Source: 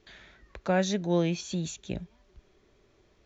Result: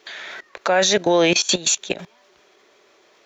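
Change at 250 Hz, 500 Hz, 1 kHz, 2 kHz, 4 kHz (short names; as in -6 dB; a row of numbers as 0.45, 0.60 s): +5.0, +11.0, +12.0, +15.0, +19.0 dB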